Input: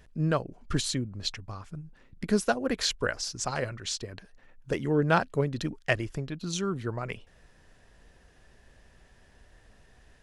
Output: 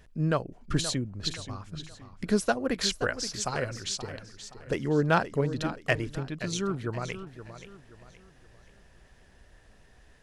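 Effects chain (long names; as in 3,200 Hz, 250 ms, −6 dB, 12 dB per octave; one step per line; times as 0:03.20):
hard clipping −12 dBFS, distortion −37 dB
feedback echo with a swinging delay time 524 ms, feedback 36%, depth 101 cents, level −12 dB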